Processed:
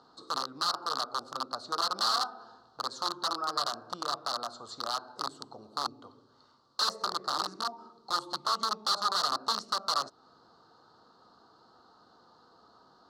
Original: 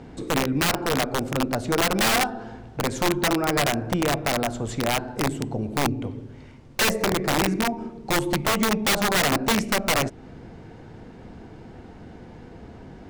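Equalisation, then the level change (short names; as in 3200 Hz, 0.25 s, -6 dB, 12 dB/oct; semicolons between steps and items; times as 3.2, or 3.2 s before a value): double band-pass 2300 Hz, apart 1.8 oct; bell 2000 Hz -7.5 dB 1.2 oct; +5.5 dB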